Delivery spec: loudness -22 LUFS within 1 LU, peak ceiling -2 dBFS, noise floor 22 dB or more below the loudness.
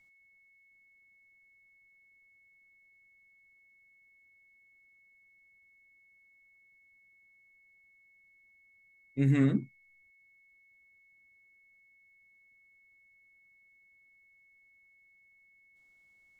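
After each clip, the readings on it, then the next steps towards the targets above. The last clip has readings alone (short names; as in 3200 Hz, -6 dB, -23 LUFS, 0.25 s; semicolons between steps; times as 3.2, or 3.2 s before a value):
steady tone 2200 Hz; tone level -62 dBFS; loudness -29.5 LUFS; peak -16.0 dBFS; loudness target -22.0 LUFS
-> notch 2200 Hz, Q 30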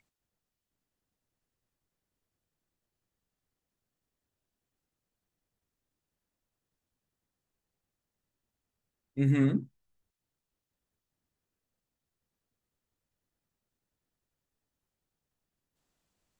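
steady tone none; loudness -28.5 LUFS; peak -16.5 dBFS; loudness target -22.0 LUFS
-> gain +6.5 dB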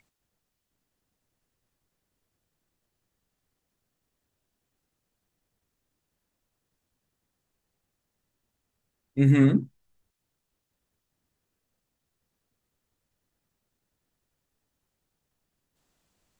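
loudness -22.0 LUFS; peak -10.0 dBFS; noise floor -82 dBFS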